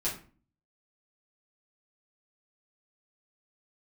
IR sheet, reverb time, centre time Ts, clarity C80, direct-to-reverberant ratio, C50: 0.40 s, 26 ms, 13.0 dB, -8.0 dB, 7.5 dB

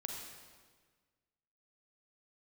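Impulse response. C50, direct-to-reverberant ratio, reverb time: 1.5 dB, 0.5 dB, 1.5 s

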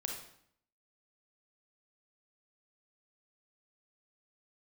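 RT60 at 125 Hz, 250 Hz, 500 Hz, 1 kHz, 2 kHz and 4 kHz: 0.80 s, 0.80 s, 0.65 s, 0.65 s, 0.60 s, 0.60 s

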